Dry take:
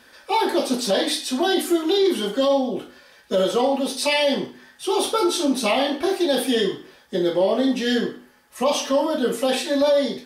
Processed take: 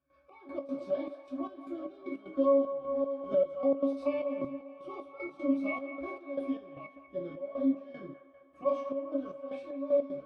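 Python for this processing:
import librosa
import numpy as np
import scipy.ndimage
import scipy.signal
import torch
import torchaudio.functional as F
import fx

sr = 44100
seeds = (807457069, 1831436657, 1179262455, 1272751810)

y = fx.reverse_delay(x, sr, ms=696, wet_db=-10.5)
y = fx.peak_eq(y, sr, hz=950.0, db=4.0, octaves=1.4)
y = fx.octave_resonator(y, sr, note='C#', decay_s=0.28)
y = fx.step_gate(y, sr, bpm=153, pattern='.xx..x.xxxx..xx.', floor_db=-12.0, edge_ms=4.5)
y = fx.doubler(y, sr, ms=19.0, db=-12.0)
y = fx.echo_wet_bandpass(y, sr, ms=199, feedback_pct=65, hz=1300.0, wet_db=-10.0)
y = fx.band_squash(y, sr, depth_pct=70, at=(2.37, 4.45))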